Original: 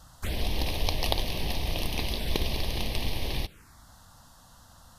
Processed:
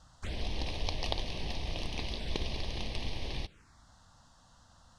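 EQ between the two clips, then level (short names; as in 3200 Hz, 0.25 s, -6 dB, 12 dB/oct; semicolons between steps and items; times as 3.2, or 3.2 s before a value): LPF 7700 Hz 24 dB/oct; -6.5 dB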